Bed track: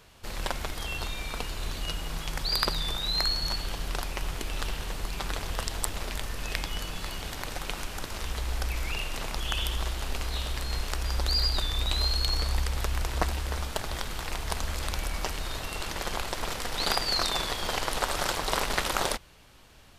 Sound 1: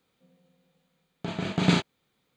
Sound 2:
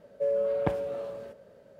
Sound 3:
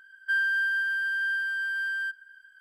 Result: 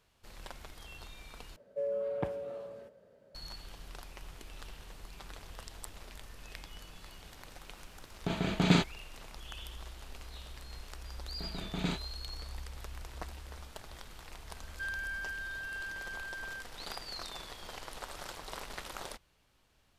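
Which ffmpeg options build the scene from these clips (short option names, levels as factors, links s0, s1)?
-filter_complex "[1:a]asplit=2[s0][s1];[0:a]volume=0.168[s2];[2:a]aresample=32000,aresample=44100[s3];[s0]dynaudnorm=f=210:g=5:m=3.76[s4];[s2]asplit=2[s5][s6];[s5]atrim=end=1.564[s7];[s3]atrim=end=1.79,asetpts=PTS-STARTPTS,volume=0.447[s8];[s6]atrim=start=3.346[s9];[s4]atrim=end=2.36,asetpts=PTS-STARTPTS,volume=0.316,afade=t=in:d=0.004:c=hsin,afade=t=out:st=2.356:d=0.004:c=hsin,adelay=7020[s10];[s1]atrim=end=2.36,asetpts=PTS-STARTPTS,volume=0.237,afade=t=in:d=0.004:c=hsin,afade=t=out:st=2.356:d=0.004:c=hsin,adelay=10160[s11];[3:a]atrim=end=2.6,asetpts=PTS-STARTPTS,volume=0.224,afade=t=in:d=0.004:c=hsin,afade=t=out:st=2.596:d=0.004:c=hsin,adelay=14510[s12];[s7][s8]acrossfade=d=0.004:c1=hsin:c2=hsin[s13];[s13][s9]acrossfade=d=0.004:c1=hsin:c2=hsin[s14];[s14][s10][s11][s12]amix=inputs=4:normalize=0"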